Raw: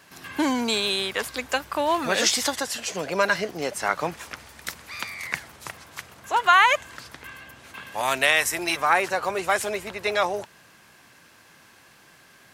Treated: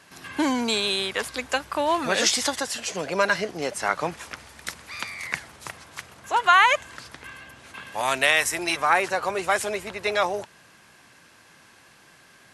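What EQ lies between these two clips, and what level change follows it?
brick-wall FIR low-pass 12000 Hz; 0.0 dB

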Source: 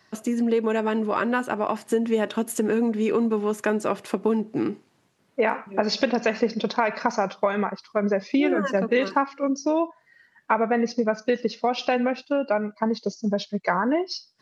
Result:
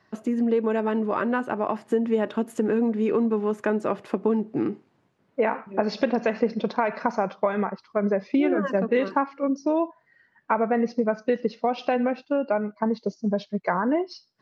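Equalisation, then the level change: LPF 1500 Hz 6 dB/oct; 0.0 dB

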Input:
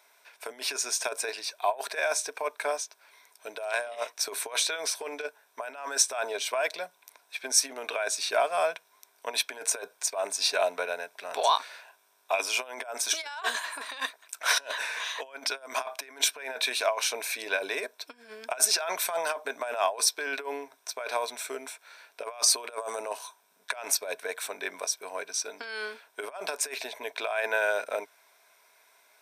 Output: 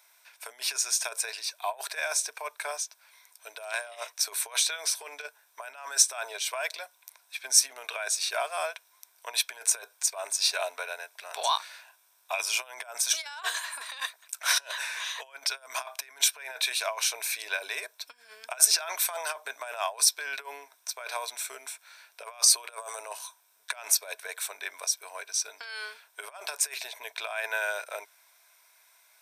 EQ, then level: HPF 750 Hz 12 dB/oct; high shelf 4600 Hz +7.5 dB; -2.5 dB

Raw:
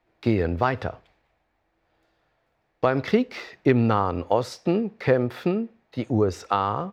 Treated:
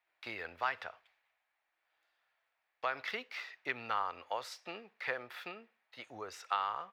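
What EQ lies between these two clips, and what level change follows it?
three-band isolator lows -13 dB, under 590 Hz, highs -17 dB, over 3000 Hz; pre-emphasis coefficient 0.97; +7.0 dB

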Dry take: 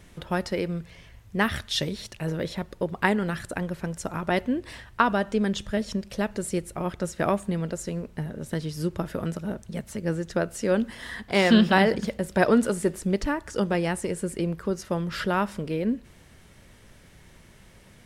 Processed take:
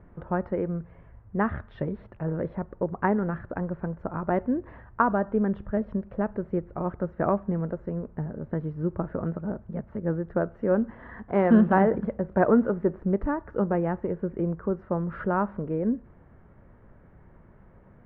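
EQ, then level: LPF 1400 Hz 24 dB/oct; 0.0 dB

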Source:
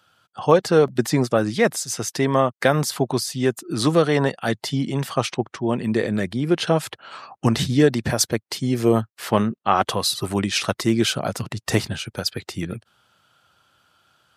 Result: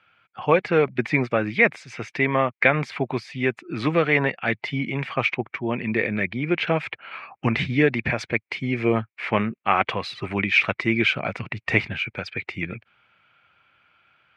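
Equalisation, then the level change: synth low-pass 2300 Hz, resonance Q 8.8; -4.0 dB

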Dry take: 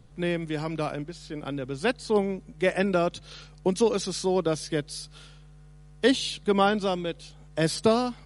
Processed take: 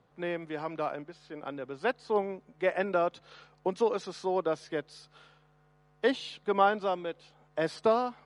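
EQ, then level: band-pass 920 Hz, Q 0.85; 0.0 dB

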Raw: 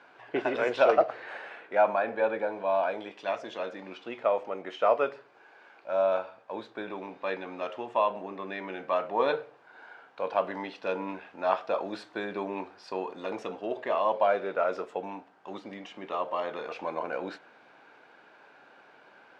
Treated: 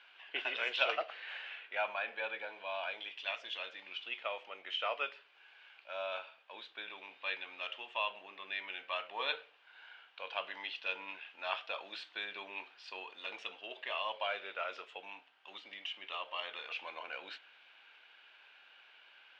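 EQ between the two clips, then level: band-pass 3000 Hz, Q 3.6; +8.5 dB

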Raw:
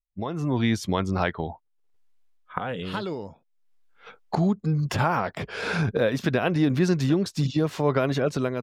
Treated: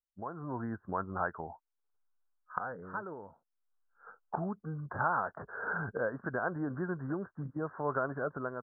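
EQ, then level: steep low-pass 1600 Hz 96 dB/oct; air absorption 270 m; tilt shelf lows -10 dB, about 780 Hz; -6.5 dB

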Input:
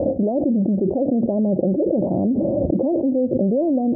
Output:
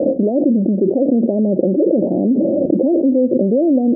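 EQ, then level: Butterworth band-pass 350 Hz, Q 0.91; +6.0 dB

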